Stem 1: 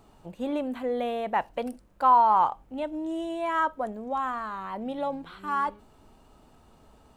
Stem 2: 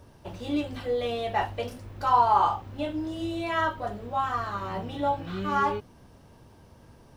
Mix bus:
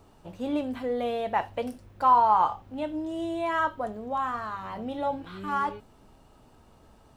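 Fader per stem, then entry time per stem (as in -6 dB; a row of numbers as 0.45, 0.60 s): -1.0, -9.5 dB; 0.00, 0.00 s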